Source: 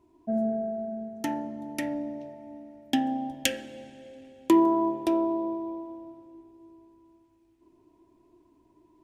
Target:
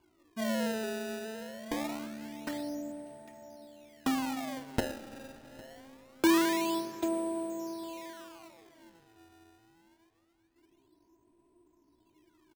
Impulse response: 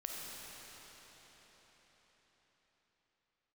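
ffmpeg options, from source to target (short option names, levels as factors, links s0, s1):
-filter_complex "[0:a]atempo=0.72,aecho=1:1:805:0.112,acrusher=samples=23:mix=1:aa=0.000001:lfo=1:lforange=36.8:lforate=0.24,asplit=2[s0][s1];[1:a]atrim=start_sample=2205,lowpass=7100,adelay=113[s2];[s1][s2]afir=irnorm=-1:irlink=0,volume=0.158[s3];[s0][s3]amix=inputs=2:normalize=0,volume=0.531"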